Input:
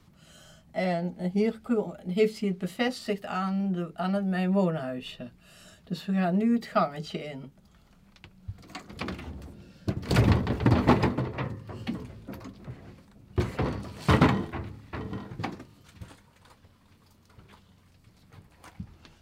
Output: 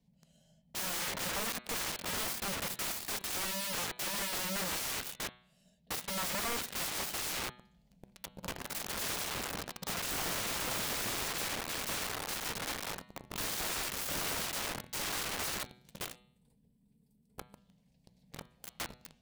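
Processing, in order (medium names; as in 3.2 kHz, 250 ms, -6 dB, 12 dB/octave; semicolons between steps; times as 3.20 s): tracing distortion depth 0.14 ms; high-pass 44 Hz 12 dB/octave; bass shelf 330 Hz +10 dB; static phaser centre 340 Hz, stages 6; gain riding within 4 dB 2 s; 3.10–5.18 s: peaking EQ 7.4 kHz +7.5 dB 0.98 oct; 16.17–17.57 s: time-frequency box 490–7500 Hz -11 dB; waveshaping leveller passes 5; integer overflow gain 24.5 dB; de-hum 123.1 Hz, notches 35; trim -6 dB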